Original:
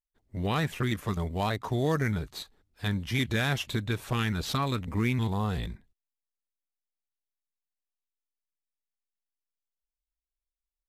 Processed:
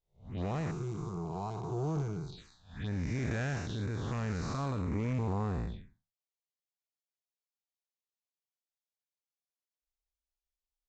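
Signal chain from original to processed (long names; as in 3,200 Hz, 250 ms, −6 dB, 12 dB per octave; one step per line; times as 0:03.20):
spectrum smeared in time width 225 ms
phaser swept by the level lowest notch 260 Hz, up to 3,300 Hz, full sweep at −30.5 dBFS
asymmetric clip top −32 dBFS
0:00.71–0:02.38: phaser with its sweep stopped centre 370 Hz, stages 8
Ogg Vorbis 96 kbit/s 16,000 Hz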